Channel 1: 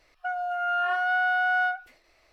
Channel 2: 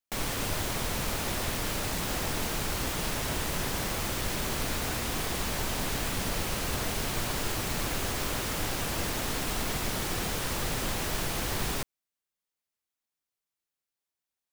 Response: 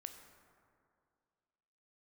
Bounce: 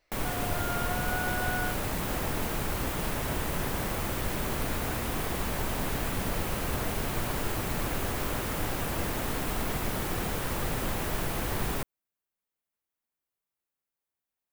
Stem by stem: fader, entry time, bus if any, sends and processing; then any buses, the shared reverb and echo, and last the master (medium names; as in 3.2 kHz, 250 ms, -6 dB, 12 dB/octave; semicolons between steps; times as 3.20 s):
-10.0 dB, 0.00 s, no send, none
+1.5 dB, 0.00 s, no send, peaking EQ 5.3 kHz -8.5 dB 2 oct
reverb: none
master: none